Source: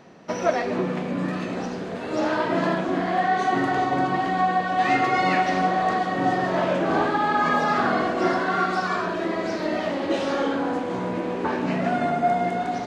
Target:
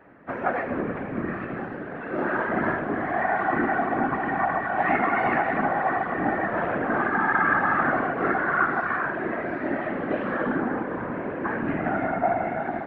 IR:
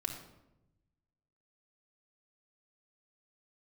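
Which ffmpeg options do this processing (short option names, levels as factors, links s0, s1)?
-filter_complex "[0:a]asplit=2[s0][s1];[s1]asetrate=55563,aresample=44100,atempo=0.793701,volume=0.251[s2];[s0][s2]amix=inputs=2:normalize=0,highpass=260,equalizer=f=280:t=q:w=4:g=4,equalizer=f=410:t=q:w=4:g=-8,equalizer=f=600:t=q:w=4:g=-4,equalizer=f=920:t=q:w=4:g=-6,equalizer=f=1600:t=q:w=4:g=5,lowpass=f=2000:w=0.5412,lowpass=f=2000:w=1.3066,afftfilt=real='hypot(re,im)*cos(2*PI*random(0))':imag='hypot(re,im)*sin(2*PI*random(1))':win_size=512:overlap=0.75,volume=2"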